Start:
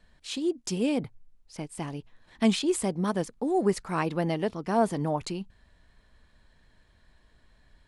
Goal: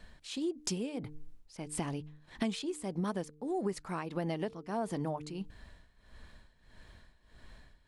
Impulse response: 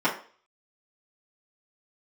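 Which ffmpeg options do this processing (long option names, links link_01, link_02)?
-af "tremolo=f=1.6:d=0.82,bandreject=frequency=150.7:width_type=h:width=4,bandreject=frequency=301.4:width_type=h:width=4,bandreject=frequency=452.1:width_type=h:width=4,acompressor=threshold=-40dB:ratio=6,volume=7.5dB"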